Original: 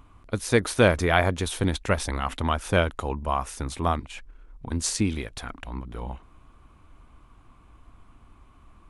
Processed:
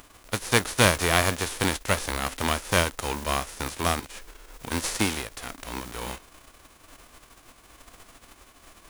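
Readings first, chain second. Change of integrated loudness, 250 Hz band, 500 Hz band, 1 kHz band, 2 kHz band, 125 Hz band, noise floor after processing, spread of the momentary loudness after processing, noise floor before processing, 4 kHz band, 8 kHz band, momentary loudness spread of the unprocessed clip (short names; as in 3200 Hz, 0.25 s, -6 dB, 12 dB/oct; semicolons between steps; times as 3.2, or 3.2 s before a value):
0.0 dB, -2.5 dB, -3.0 dB, 0.0 dB, +2.0 dB, -3.0 dB, -55 dBFS, 15 LU, -55 dBFS, +5.0 dB, +4.0 dB, 17 LU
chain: spectral whitening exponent 0.3; in parallel at -10 dB: sample-rate reducer 5200 Hz; on the sum: gain -2.5 dB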